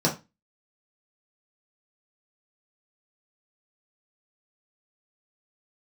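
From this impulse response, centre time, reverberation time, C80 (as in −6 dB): 18 ms, 0.25 s, 19.0 dB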